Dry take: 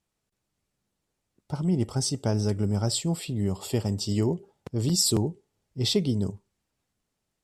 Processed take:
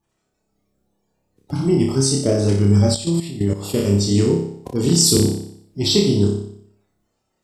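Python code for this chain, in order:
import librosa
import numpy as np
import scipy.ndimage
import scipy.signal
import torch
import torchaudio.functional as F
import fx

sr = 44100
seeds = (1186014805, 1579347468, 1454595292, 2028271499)

y = fx.spec_quant(x, sr, step_db=30)
y = fx.room_flutter(y, sr, wall_m=5.1, rt60_s=0.65)
y = fx.level_steps(y, sr, step_db=12, at=(2.94, 3.79))
y = y * librosa.db_to_amplitude(6.5)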